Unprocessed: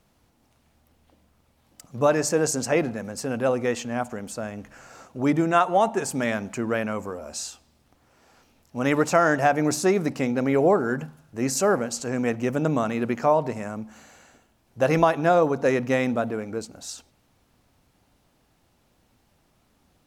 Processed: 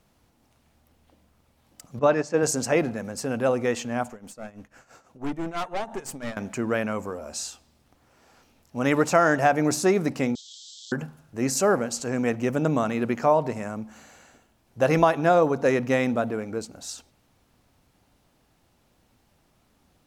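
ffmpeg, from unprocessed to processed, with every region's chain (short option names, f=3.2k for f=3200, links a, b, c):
-filter_complex "[0:a]asettb=1/sr,asplit=3[a][b][c];[a]atrim=end=1.994[d];[b]atrim=start=1.99:end=2.43,asetpts=PTS-STARTPTS,afade=t=in:d=0.004:c=qsin,afade=t=out:st=0.436:d=0.004:c=qsin,agate=range=-8dB:threshold=-24dB:ratio=16:release=100:detection=peak,highpass=110,lowpass=4.5k[e];[c]atrim=start=2.426[f];[d][e]acrossfade=d=0.004:c1=hsin:c2=qsin[g];[g][f]acrossfade=d=0.004:c1=qsin:c2=hsin,asettb=1/sr,asplit=3[h][i][j];[h]atrim=end=4.114[k];[i]atrim=start=4.11:end=6.37,asetpts=PTS-STARTPTS,afade=t=in:d=0.004:c=qsin,afade=t=out:st=2.256:d=0.004:c=qsin,tremolo=f=6:d=0.8,aeval=exprs='(tanh(20*val(0)+0.65)-tanh(0.65))/20':c=same[l];[j]atrim=start=6.366[m];[k][l]acrossfade=d=0.004:c1=hsin:c2=qsin[n];[n][m]acrossfade=d=0.004:c1=qsin:c2=hsin,asettb=1/sr,asplit=3[o][p][q];[o]atrim=end=10.354[r];[p]atrim=start=10.35:end=10.92,asetpts=PTS-STARTPTS,afade=t=in:d=0.004:c=qsin,afade=t=out:st=0.566:d=0.004:c=qsin,aeval=exprs='val(0)+0.5*0.0531*sgn(val(0))':c=same,asuperpass=centerf=5100:order=20:qfactor=1.1[s];[q]atrim=start=10.916[t];[r][s]acrossfade=d=0.004:c1=hsin:c2=qsin[u];[u][t]acrossfade=d=0.004:c1=qsin:c2=hsin"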